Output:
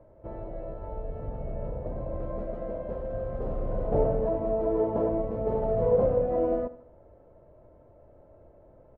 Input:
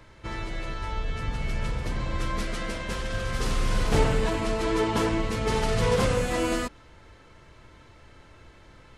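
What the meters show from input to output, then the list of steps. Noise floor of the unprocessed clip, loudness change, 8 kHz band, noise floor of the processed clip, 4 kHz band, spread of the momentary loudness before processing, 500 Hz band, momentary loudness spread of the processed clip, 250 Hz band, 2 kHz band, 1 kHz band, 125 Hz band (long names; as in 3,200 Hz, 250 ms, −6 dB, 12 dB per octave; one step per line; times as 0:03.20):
−53 dBFS, −1.5 dB, below −40 dB, −56 dBFS, below −35 dB, 10 LU, +2.5 dB, 14 LU, −4.0 dB, below −20 dB, −5.5 dB, −6.0 dB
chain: low-pass with resonance 610 Hz, resonance Q 4.9
repeating echo 77 ms, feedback 44%, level −17.5 dB
level −6 dB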